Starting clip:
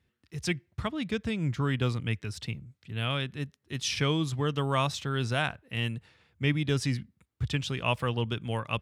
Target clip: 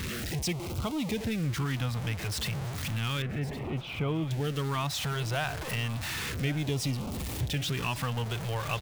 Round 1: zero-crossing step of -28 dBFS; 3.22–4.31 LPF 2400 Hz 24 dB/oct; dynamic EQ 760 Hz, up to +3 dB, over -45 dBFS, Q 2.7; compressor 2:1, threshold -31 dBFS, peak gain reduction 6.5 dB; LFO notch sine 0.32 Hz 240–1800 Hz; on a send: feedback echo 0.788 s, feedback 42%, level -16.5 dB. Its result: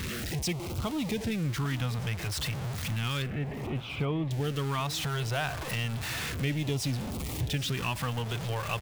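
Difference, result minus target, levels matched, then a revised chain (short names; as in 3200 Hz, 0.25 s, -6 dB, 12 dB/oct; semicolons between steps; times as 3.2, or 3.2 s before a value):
echo 0.327 s early
zero-crossing step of -28 dBFS; 3.22–4.31 LPF 2400 Hz 24 dB/oct; dynamic EQ 760 Hz, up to +3 dB, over -45 dBFS, Q 2.7; compressor 2:1, threshold -31 dBFS, peak gain reduction 6.5 dB; LFO notch sine 0.32 Hz 240–1800 Hz; on a send: feedback echo 1.115 s, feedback 42%, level -16.5 dB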